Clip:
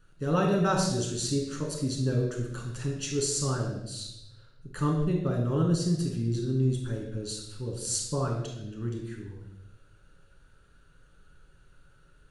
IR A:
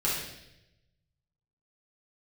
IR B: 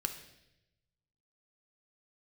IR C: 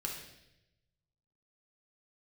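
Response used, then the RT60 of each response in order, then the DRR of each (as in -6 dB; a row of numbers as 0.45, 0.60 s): C; 0.85, 0.85, 0.85 s; -8.0, 5.5, -1.0 dB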